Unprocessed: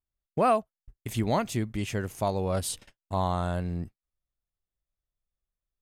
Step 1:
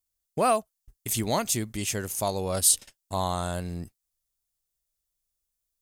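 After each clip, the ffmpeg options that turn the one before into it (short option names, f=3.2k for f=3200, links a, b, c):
-af "bass=f=250:g=-3,treble=f=4k:g=15"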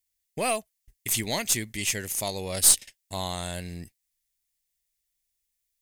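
-af "highshelf=f=1.6k:t=q:w=3:g=6,aeval=exprs='0.944*(cos(1*acos(clip(val(0)/0.944,-1,1)))-cos(1*PI/2))+0.168*(cos(2*acos(clip(val(0)/0.944,-1,1)))-cos(2*PI/2))+0.0668*(cos(4*acos(clip(val(0)/0.944,-1,1)))-cos(4*PI/2))+0.0596*(cos(6*acos(clip(val(0)/0.944,-1,1)))-cos(6*PI/2))':c=same,volume=-3.5dB"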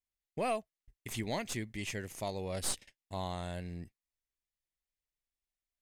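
-af "lowpass=f=1.5k:p=1,volume=-4.5dB"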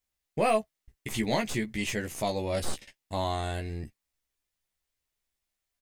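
-filter_complex "[0:a]deesser=0.95,asplit=2[a][b];[b]adelay=14,volume=-4dB[c];[a][c]amix=inputs=2:normalize=0,volume=7dB"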